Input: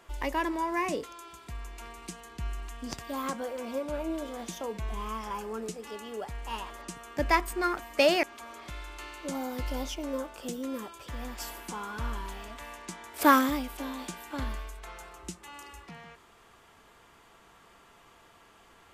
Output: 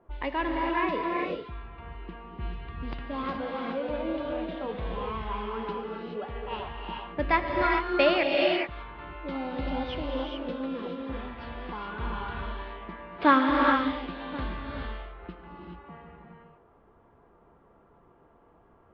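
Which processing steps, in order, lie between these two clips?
low-pass that shuts in the quiet parts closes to 620 Hz, open at −28.5 dBFS
Butterworth low-pass 4,100 Hz 48 dB per octave
reverb whose tail is shaped and stops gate 450 ms rising, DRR −0.5 dB

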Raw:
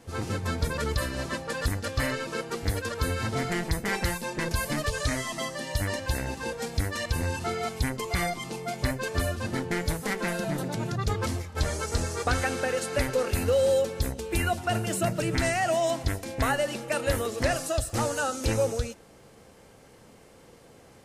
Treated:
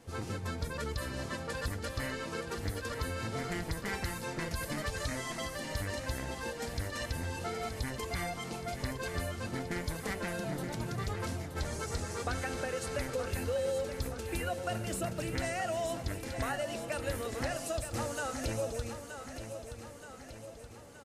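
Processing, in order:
downward compressor 2 to 1, threshold −31 dBFS, peak gain reduction 6.5 dB
repeating echo 924 ms, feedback 55%, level −9 dB
level −4.5 dB

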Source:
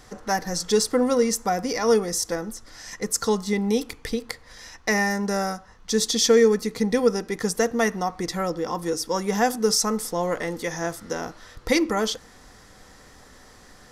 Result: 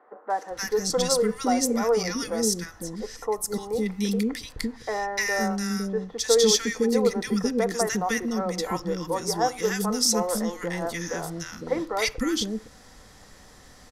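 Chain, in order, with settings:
0:02.86–0:03.56: flat-topped bell 3,300 Hz −9.5 dB 2.7 octaves
three-band delay without the direct sound mids, highs, lows 300/510 ms, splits 370/1,400 Hz

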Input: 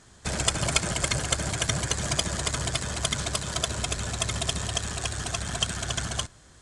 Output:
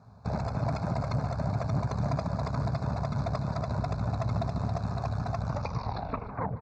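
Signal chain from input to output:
turntable brake at the end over 1.23 s
tilt shelving filter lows +7.5 dB, about 1,200 Hz
brickwall limiter −17.5 dBFS, peak gain reduction 9 dB
phaser with its sweep stopped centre 800 Hz, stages 4
tube saturation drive 21 dB, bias 0.65
Butterworth band-reject 3,100 Hz, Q 1.9
loudspeaker in its box 110–4,000 Hz, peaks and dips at 110 Hz +3 dB, 270 Hz +3 dB, 520 Hz −5 dB, 2,100 Hz +5 dB
on a send: repeating echo 150 ms, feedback 52%, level −16.5 dB
on the sum: level +4.5 dB
SBC 192 kbit/s 48,000 Hz

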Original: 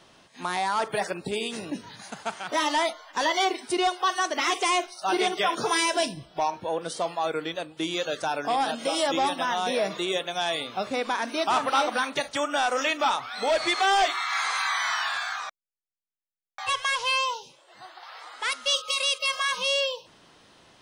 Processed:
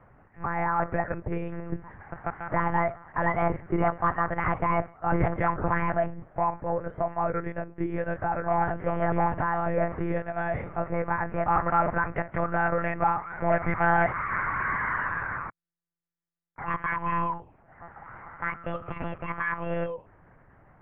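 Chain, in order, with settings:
one-pitch LPC vocoder at 8 kHz 170 Hz
Butterworth low-pass 2,000 Hz 48 dB per octave
parametric band 130 Hz +6 dB 1 octave

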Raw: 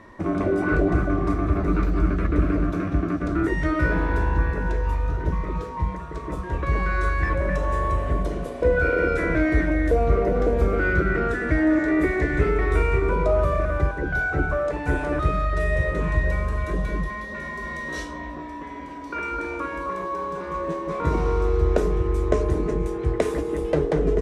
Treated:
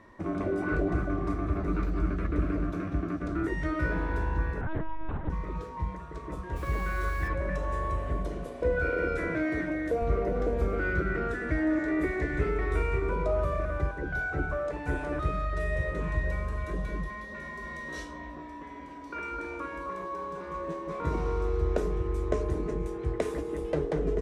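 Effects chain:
0:04.61–0:05.30: linear-prediction vocoder at 8 kHz pitch kept
0:06.55–0:07.27: background noise pink −44 dBFS
0:09.28–0:10.02: high-pass filter 120 Hz 12 dB per octave
level −7.5 dB

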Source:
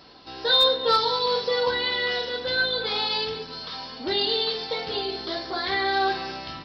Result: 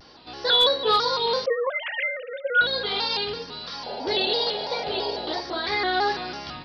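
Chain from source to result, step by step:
0:01.46–0:02.61: three sine waves on the formant tracks
0:03.86–0:05.41: sound drawn into the spectrogram noise 390–950 Hz −34 dBFS
pitch modulation by a square or saw wave square 3 Hz, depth 100 cents

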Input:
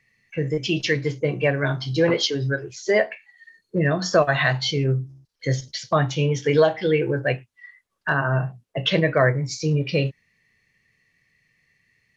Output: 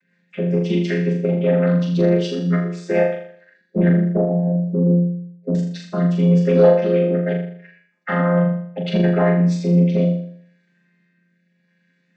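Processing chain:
channel vocoder with a chord as carrier minor triad, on F3
0:03.89–0:05.55: inverse Chebyshev low-pass filter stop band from 1,200 Hz, stop band 40 dB
in parallel at −0.5 dB: downward compressor, threshold −27 dBFS, peak gain reduction 15 dB
on the sum: rotating-speaker cabinet horn 5 Hz, later 0.75 Hz, at 0:01.32
soft clipping −7 dBFS, distortion −24 dB
on a send: flutter between parallel walls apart 6.9 metres, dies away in 0.6 s

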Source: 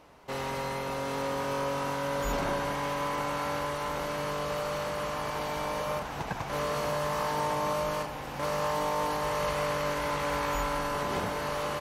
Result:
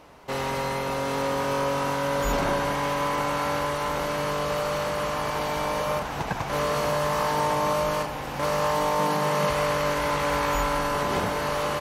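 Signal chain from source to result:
0:08.99–0:09.50: low shelf with overshoot 110 Hz −14 dB, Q 3
level +5.5 dB

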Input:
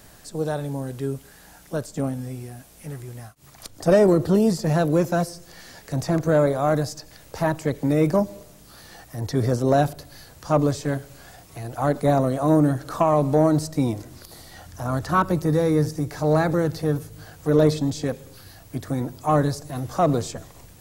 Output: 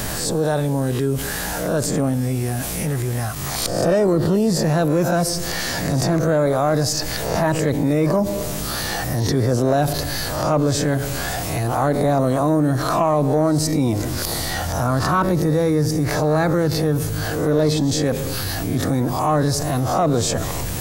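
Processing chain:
peak hold with a rise ahead of every peak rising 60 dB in 0.39 s
envelope flattener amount 70%
level −3 dB

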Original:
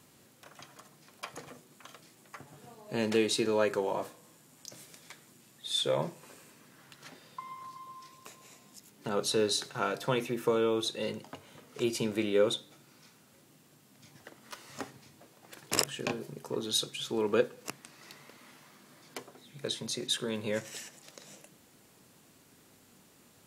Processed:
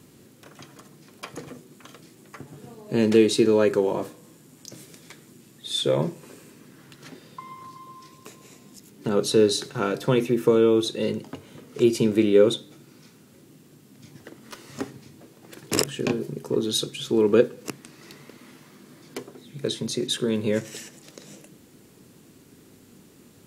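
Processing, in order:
low shelf with overshoot 510 Hz +6.5 dB, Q 1.5
level +4 dB

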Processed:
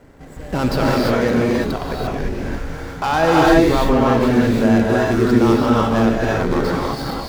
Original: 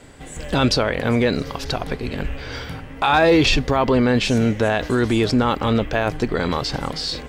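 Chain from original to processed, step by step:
running median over 15 samples
reverb whose tail is shaped and stops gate 370 ms rising, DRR −4 dB
level −1.5 dB

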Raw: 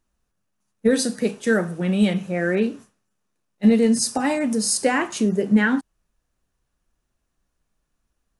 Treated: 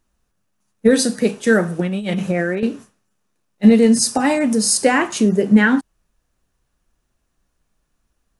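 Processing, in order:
0:01.79–0:02.63: compressor whose output falls as the input rises −26 dBFS, ratio −1
level +5 dB

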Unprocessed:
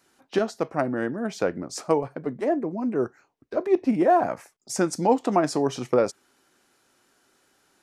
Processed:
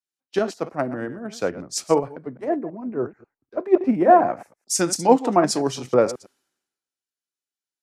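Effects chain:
delay that plays each chunk backwards 108 ms, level −12 dB
multiband upward and downward expander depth 100%
level +1 dB

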